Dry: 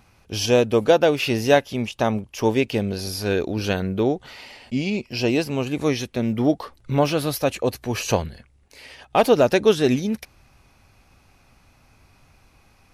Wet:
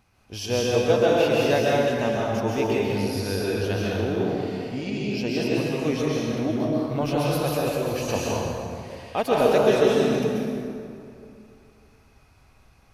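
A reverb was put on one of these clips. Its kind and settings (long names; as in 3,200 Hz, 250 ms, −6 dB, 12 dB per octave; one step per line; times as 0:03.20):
dense smooth reverb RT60 2.6 s, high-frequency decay 0.6×, pre-delay 115 ms, DRR −5.5 dB
level −8.5 dB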